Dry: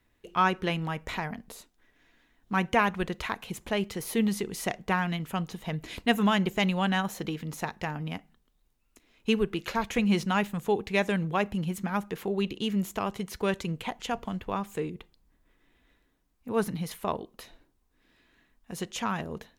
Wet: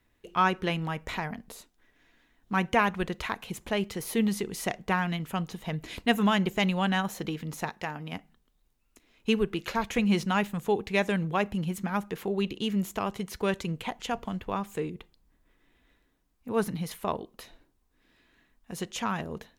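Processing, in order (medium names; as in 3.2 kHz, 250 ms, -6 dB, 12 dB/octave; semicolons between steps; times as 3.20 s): 7.70–8.13 s: bass shelf 170 Hz -10.5 dB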